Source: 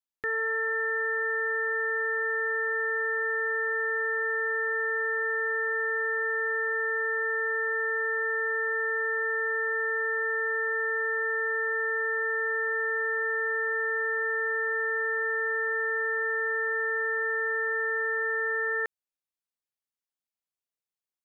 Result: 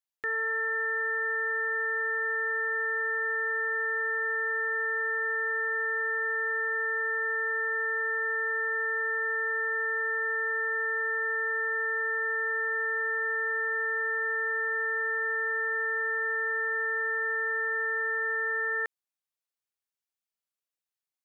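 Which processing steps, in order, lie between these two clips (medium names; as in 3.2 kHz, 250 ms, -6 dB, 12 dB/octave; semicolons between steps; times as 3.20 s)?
bass shelf 380 Hz -9.5 dB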